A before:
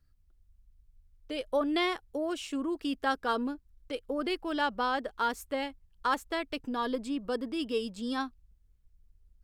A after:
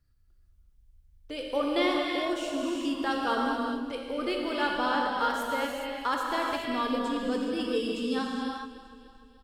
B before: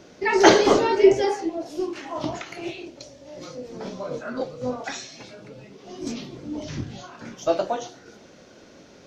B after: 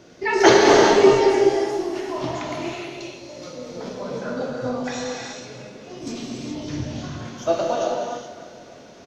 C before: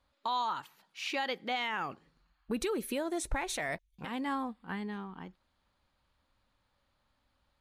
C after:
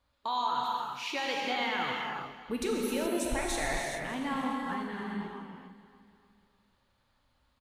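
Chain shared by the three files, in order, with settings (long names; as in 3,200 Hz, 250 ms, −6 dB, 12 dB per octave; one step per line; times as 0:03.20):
on a send: repeating echo 296 ms, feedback 51%, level −15.5 dB
on the sum: reverb whose tail is shaped and stops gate 450 ms flat, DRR −2 dB
level −1 dB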